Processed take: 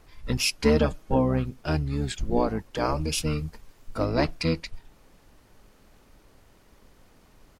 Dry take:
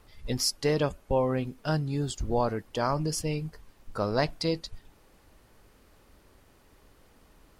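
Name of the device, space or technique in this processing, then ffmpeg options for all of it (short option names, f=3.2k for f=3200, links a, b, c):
octave pedal: -filter_complex "[0:a]asettb=1/sr,asplit=3[a][b][c];[a]atrim=end=0.594[d];[b]atrim=start=0.59:end=1.16,asetpts=PTS-STARTPTS,afade=t=in:d=0.004:c=qsin,afade=t=out:st=0.566:d=0.004:c=qsin,aecho=1:1:6.4:0.8,atrim=end_sample=25137[e];[c]atrim=start=1.156[f];[d][e]acrossfade=d=0.004:c1=hsin:c2=qsin[g];[g][f]acrossfade=d=0.004:c1=qsin:c2=hsin,asettb=1/sr,asplit=3[h][i][j];[h]atrim=end=2.774[k];[i]atrim=start=2.77:end=4.05,asetpts=PTS-STARTPTS,afade=t=in:d=0.004:c=qsin,afade=t=out:st=1.276:d=0.004:c=qsin,highshelf=f=6.5k:g=4.5[l];[j]atrim=start=4.046[m];[k][l]acrossfade=d=0.004:c1=hsin:c2=qsin[n];[n][m]acrossfade=d=0.004:c1=qsin:c2=hsin,asplit=2[o][p];[p]asetrate=22050,aresample=44100,atempo=2,volume=-1dB[q];[o][q]amix=inputs=2:normalize=0"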